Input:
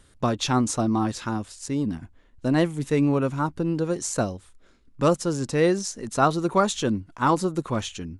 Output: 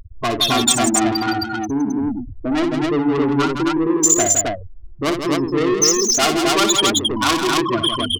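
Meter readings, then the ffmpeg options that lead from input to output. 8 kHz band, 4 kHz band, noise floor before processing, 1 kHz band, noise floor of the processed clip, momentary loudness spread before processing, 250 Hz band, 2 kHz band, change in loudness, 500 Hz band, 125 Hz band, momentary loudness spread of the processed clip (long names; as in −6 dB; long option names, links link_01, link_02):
+17.0 dB, +17.0 dB, −57 dBFS, +5.5 dB, −33 dBFS, 8 LU, +6.0 dB, +10.0 dB, +7.5 dB, +4.5 dB, −1.5 dB, 9 LU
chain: -filter_complex "[0:a]aeval=exprs='val(0)+0.5*0.0841*sgn(val(0))':channel_layout=same,lowshelf=frequency=240:gain=-6,afftfilt=real='re*gte(hypot(re,im),0.224)':imag='im*gte(hypot(re,im),0.224)':win_size=1024:overlap=0.75,aecho=1:1:2.8:0.78,acrossover=split=140|1800[link_01][link_02][link_03];[link_01]acompressor=threshold=-40dB:ratio=6[link_04];[link_03]alimiter=level_in=0.5dB:limit=-24dB:level=0:latency=1:release=133,volume=-0.5dB[link_05];[link_04][link_02][link_05]amix=inputs=3:normalize=0,asoftclip=type=tanh:threshold=-22dB,crystalizer=i=3:c=0,adynamicsmooth=sensitivity=5:basefreq=2800,aecho=1:1:58.31|163.3|265.3:0.398|0.447|0.794,adynamicequalizer=threshold=0.0112:dfrequency=2500:dqfactor=0.7:tfrequency=2500:tqfactor=0.7:attack=5:release=100:ratio=0.375:range=3.5:mode=boostabove:tftype=highshelf,volume=5dB"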